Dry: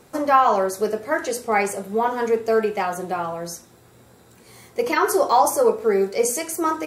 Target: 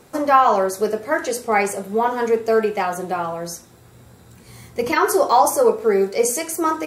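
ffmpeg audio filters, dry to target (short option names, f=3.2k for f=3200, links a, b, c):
-filter_complex "[0:a]asettb=1/sr,asplit=3[a][b][c];[a]atrim=end=3.424[d];[b]atrim=start=3.42:end=4.93,asetpts=PTS-STARTPTS,afade=t=in:d=0.004:c=qsin,afade=t=out:st=1.506:d=0.004:c=qsin,asubboost=boost=7:cutoff=210[e];[c]atrim=start=4.926[f];[d][e]acrossfade=d=0.004:c1=hsin:c2=qsin[g];[g][f]acrossfade=d=0.004:c1=qsin:c2=hsin,volume=2dB"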